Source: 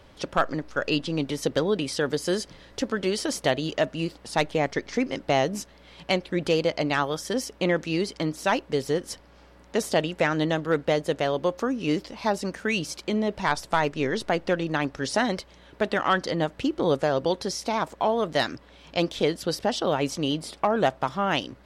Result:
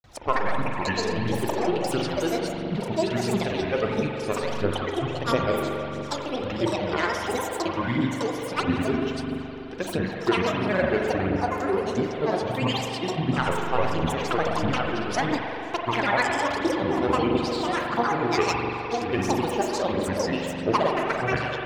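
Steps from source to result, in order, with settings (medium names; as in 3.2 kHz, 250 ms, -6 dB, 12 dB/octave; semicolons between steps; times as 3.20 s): peaking EQ 8.3 kHz -10 dB 0.22 oct; flutter echo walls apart 10.4 m, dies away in 0.39 s; granulator, grains 20 per s, pitch spread up and down by 12 st; spring tank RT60 3.4 s, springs 42 ms, chirp 75 ms, DRR 0.5 dB; flange 1.5 Hz, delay 0.1 ms, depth 3 ms, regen +45%; trim +3 dB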